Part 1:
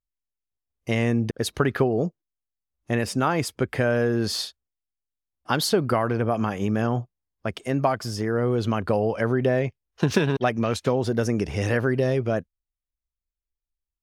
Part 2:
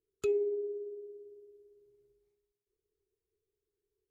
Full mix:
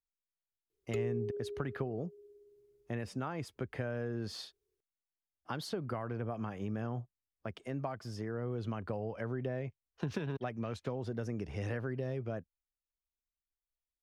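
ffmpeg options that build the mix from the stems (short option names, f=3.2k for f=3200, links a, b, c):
-filter_complex "[0:a]highshelf=f=5.1k:g=-10.5,volume=-11dB[a];[1:a]adelay=700,volume=1dB[b];[a][b]amix=inputs=2:normalize=0,acrossover=split=140[c][d];[d]acompressor=threshold=-39dB:ratio=2[e];[c][e]amix=inputs=2:normalize=0"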